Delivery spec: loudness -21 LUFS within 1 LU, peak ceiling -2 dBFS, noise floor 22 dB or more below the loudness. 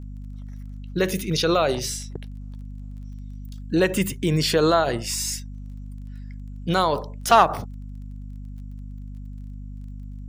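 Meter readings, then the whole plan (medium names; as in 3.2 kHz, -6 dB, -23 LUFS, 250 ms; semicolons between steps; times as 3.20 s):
tick rate 20 per s; hum 50 Hz; highest harmonic 250 Hz; hum level -33 dBFS; loudness -22.5 LUFS; peak level -5.0 dBFS; loudness target -21.0 LUFS
-> de-click; de-hum 50 Hz, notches 5; trim +1.5 dB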